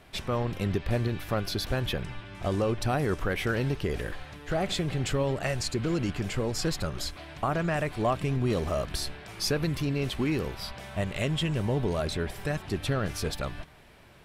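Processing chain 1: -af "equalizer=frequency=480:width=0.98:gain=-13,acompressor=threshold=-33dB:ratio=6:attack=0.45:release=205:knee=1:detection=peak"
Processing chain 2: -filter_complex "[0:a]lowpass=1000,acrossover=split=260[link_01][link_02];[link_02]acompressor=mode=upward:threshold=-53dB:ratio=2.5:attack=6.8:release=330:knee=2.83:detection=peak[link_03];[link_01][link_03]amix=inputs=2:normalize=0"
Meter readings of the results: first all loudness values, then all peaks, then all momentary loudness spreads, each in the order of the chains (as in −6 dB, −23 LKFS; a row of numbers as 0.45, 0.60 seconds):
−40.0, −31.0 LKFS; −27.0, −15.5 dBFS; 4, 9 LU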